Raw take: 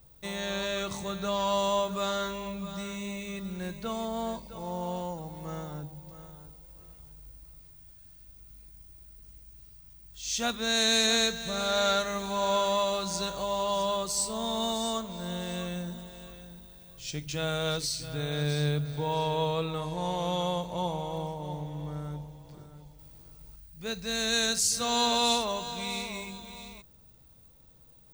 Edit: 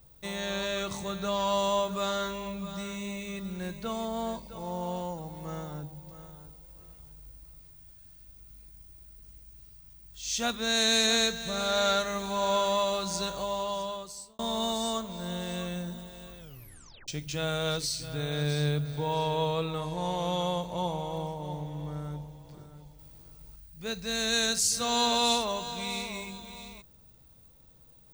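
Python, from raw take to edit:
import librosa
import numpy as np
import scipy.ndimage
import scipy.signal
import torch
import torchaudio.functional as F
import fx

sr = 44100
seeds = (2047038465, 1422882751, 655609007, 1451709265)

y = fx.edit(x, sr, fx.fade_out_span(start_s=13.35, length_s=1.04),
    fx.tape_stop(start_s=16.38, length_s=0.7), tone=tone)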